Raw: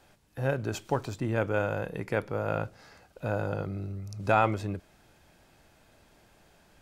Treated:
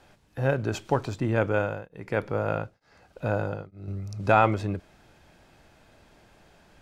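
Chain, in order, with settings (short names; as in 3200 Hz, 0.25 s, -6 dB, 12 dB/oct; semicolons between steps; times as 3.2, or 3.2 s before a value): high shelf 9000 Hz -11.5 dB; 1.44–3.88 beating tremolo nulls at 1.1 Hz; gain +4 dB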